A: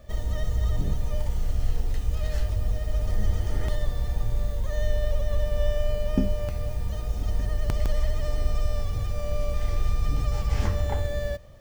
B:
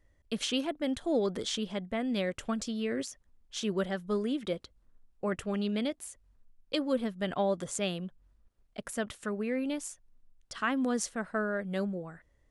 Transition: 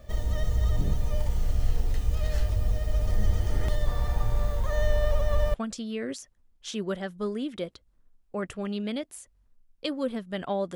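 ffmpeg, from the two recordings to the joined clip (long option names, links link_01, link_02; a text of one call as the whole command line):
ffmpeg -i cue0.wav -i cue1.wav -filter_complex "[0:a]asettb=1/sr,asplit=3[link_01][link_02][link_03];[link_01]atrim=end=3.874[link_04];[link_02]atrim=start=3.87:end=5.54,asetpts=PTS-STARTPTS,afade=type=in:duration=0.004:curve=qsin,afade=type=out:start_time=1.666:duration=0.004:curve=qsin,equalizer=frequency=1100:width=1:gain=9[link_05];[link_03]atrim=start=5.536[link_06];[link_04][link_05]acrossfade=duration=0.004:curve1=hsin:curve2=qsin[link_07];[link_07][link_06]acrossfade=duration=0.004:curve1=qsin:curve2=hsin,apad=whole_dur=10.75,atrim=end=10.75,atrim=end=5.542[link_08];[1:a]atrim=start=2.428:end=7.64[link_09];[link_08][link_09]acrossfade=duration=0.004:curve1=hsin:curve2=hsin" out.wav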